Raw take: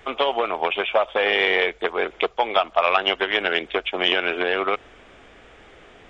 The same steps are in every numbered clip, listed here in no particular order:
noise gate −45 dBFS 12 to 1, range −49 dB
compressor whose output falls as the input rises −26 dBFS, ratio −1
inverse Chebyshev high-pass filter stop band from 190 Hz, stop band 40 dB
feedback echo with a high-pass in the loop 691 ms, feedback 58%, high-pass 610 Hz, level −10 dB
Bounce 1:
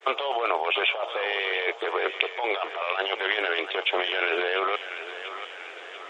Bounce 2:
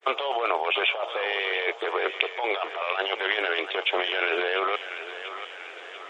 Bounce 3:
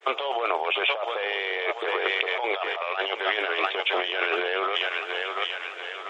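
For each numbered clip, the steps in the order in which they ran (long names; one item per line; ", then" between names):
compressor whose output falls as the input rises, then feedback echo with a high-pass in the loop, then noise gate, then inverse Chebyshev high-pass filter
compressor whose output falls as the input rises, then inverse Chebyshev high-pass filter, then noise gate, then feedback echo with a high-pass in the loop
feedback echo with a high-pass in the loop, then compressor whose output falls as the input rises, then noise gate, then inverse Chebyshev high-pass filter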